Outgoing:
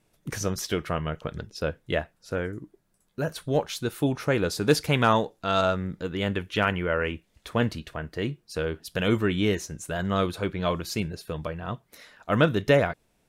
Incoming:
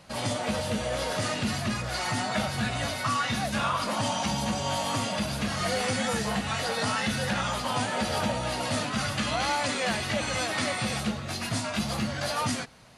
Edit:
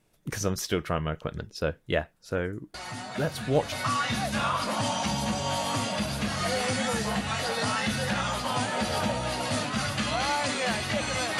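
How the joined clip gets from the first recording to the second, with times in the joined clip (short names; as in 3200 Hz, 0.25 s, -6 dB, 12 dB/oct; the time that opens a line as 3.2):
outgoing
2.74 add incoming from 1.94 s 0.98 s -8.5 dB
3.72 switch to incoming from 2.92 s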